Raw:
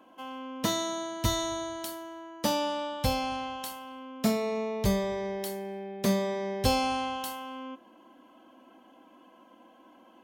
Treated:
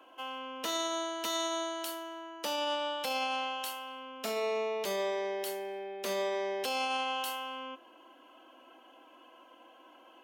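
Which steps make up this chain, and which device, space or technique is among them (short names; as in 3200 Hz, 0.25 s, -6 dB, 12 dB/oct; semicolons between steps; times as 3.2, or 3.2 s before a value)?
laptop speaker (HPF 330 Hz 24 dB/oct; bell 1400 Hz +4.5 dB 0.29 oct; bell 2800 Hz +8 dB 0.36 oct; limiter -25 dBFS, peak gain reduction 11.5 dB)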